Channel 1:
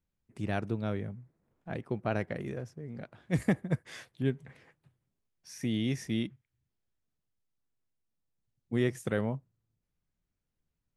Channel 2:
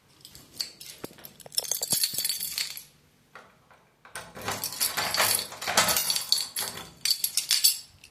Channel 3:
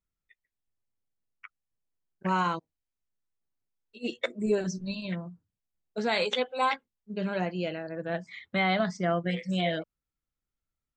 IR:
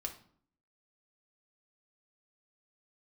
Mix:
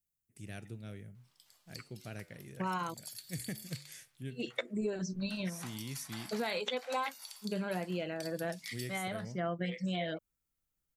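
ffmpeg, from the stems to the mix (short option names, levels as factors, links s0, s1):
-filter_complex "[0:a]equalizer=f=125:t=o:w=1:g=6,equalizer=f=1000:t=o:w=1:g=-12,equalizer=f=4000:t=o:w=1:g=-7,crystalizer=i=9.5:c=0,flanger=delay=9.4:depth=2.8:regen=-87:speed=1:shape=triangular,volume=0.282,asplit=2[s0][s1];[1:a]highpass=f=630:w=0.5412,highpass=f=630:w=1.3066,acompressor=threshold=0.0398:ratio=6,adelay=1150,volume=0.168[s2];[2:a]adelay=350,volume=1[s3];[s1]apad=whole_len=499161[s4];[s3][s4]sidechaincompress=threshold=0.00282:ratio=8:attack=16:release=167[s5];[s0][s2][s5]amix=inputs=3:normalize=0,acompressor=threshold=0.0224:ratio=4"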